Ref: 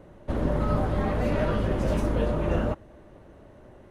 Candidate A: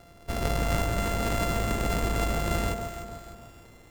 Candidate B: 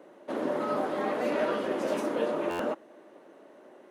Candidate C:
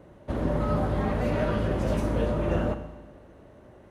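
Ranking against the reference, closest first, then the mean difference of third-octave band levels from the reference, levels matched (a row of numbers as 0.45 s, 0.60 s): C, B, A; 1.0 dB, 5.0 dB, 10.0 dB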